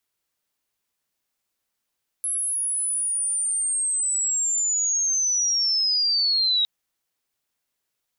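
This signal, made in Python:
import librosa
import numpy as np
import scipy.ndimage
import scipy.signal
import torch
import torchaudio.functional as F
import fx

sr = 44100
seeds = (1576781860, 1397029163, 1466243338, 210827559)

y = fx.chirp(sr, length_s=4.41, from_hz=11000.0, to_hz=3800.0, law='linear', from_db=-23.0, to_db=-18.0)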